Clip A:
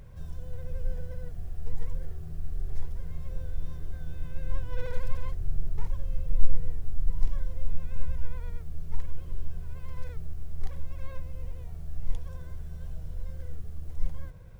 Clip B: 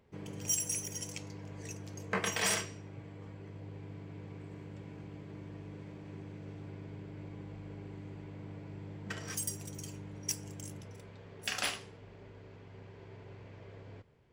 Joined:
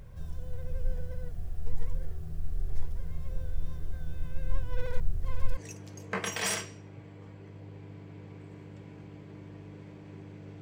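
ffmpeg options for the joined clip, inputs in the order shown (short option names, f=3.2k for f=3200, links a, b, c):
-filter_complex "[0:a]apad=whole_dur=10.61,atrim=end=10.61,asplit=2[a][b];[a]atrim=end=5.002[c];[b]atrim=start=4.998:end=5.572,asetpts=PTS-STARTPTS,areverse[d];[1:a]atrim=start=1.568:end=6.61[e];[c][d]acrossfade=d=0.004:c1=hsin:c2=hsin[f];[f][e]acrossfade=d=0.004:c1=hsin:c2=hsin"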